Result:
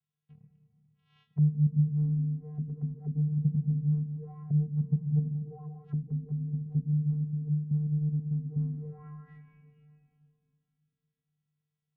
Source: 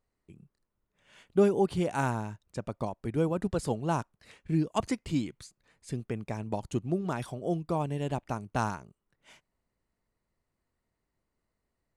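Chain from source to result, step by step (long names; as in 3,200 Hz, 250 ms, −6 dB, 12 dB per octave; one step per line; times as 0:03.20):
Chebyshev band-stop filter 300–950 Hz, order 5
channel vocoder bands 4, square 150 Hz
convolution reverb RT60 2.9 s, pre-delay 5 ms, DRR 6.5 dB
envelope-controlled low-pass 240–3,400 Hz down, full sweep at −33.5 dBFS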